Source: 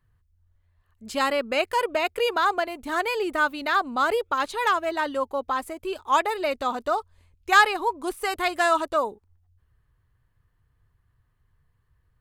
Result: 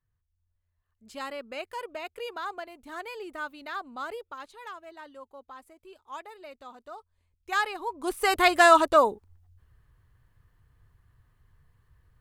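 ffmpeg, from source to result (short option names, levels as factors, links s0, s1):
-af "volume=3.55,afade=t=out:st=4.02:d=0.56:silence=0.473151,afade=t=in:st=6.89:d=1.01:silence=0.266073,afade=t=in:st=7.9:d=0.47:silence=0.237137"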